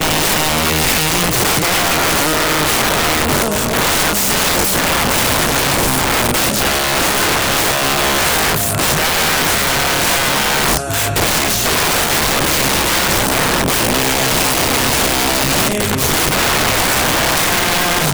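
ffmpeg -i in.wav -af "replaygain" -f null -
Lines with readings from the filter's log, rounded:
track_gain = -2.0 dB
track_peak = 0.236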